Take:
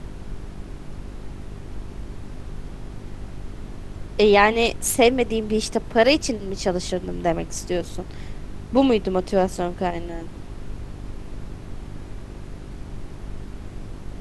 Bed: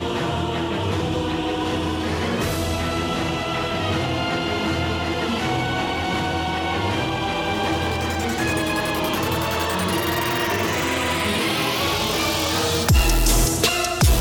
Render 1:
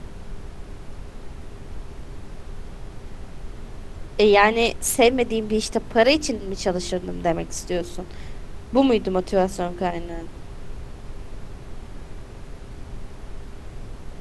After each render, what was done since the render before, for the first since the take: de-hum 50 Hz, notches 7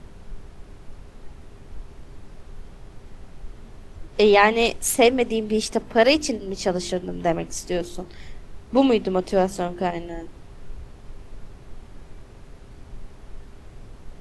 noise print and reduce 6 dB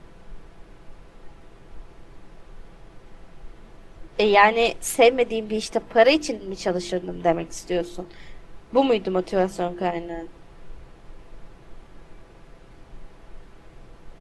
tone controls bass -6 dB, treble -6 dB; comb 6 ms, depth 39%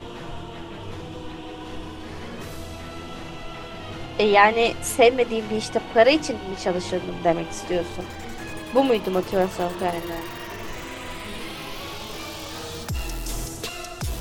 add bed -13 dB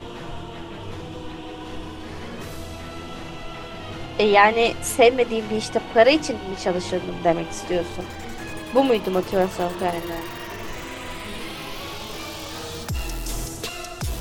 gain +1 dB; limiter -3 dBFS, peak gain reduction 1 dB

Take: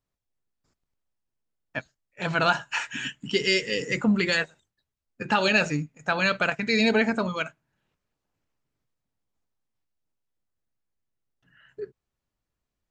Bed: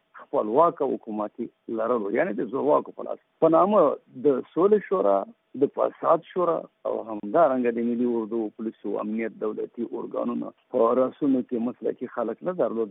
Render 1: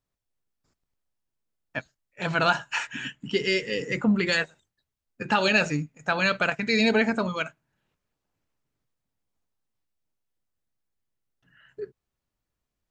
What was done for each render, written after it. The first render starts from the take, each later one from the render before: 2.87–4.27 high shelf 3800 Hz -8.5 dB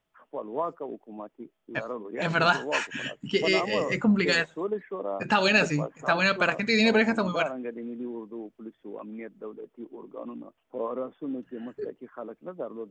add bed -11 dB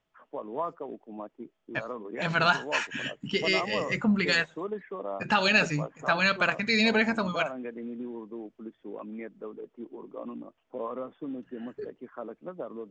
LPF 7300 Hz 24 dB/oct; dynamic EQ 380 Hz, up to -5 dB, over -36 dBFS, Q 0.81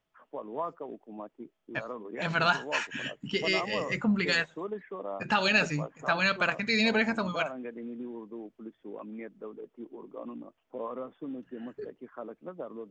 gain -2 dB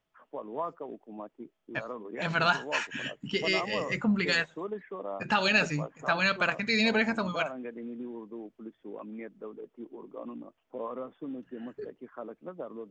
nothing audible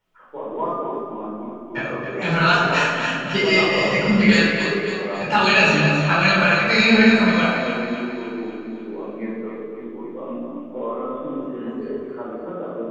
split-band echo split 530 Hz, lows 0.15 s, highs 0.274 s, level -7 dB; shoebox room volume 610 m³, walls mixed, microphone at 4.5 m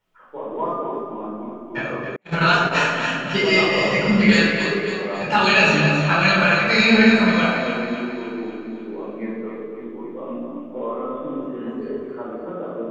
2.16–2.75 gate -20 dBFS, range -43 dB

